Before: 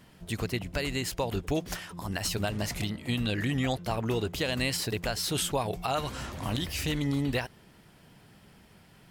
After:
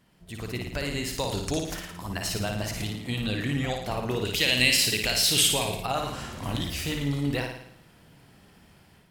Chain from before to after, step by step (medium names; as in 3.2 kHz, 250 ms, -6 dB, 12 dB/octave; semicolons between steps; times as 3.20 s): 1.14–1.59 s: high-order bell 6.2 kHz +12 dB; flutter echo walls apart 9.6 m, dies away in 0.69 s; level rider gain up to 8 dB; 4.25–5.83 s: resonant high shelf 1.7 kHz +8.5 dB, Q 1.5; trim -8.5 dB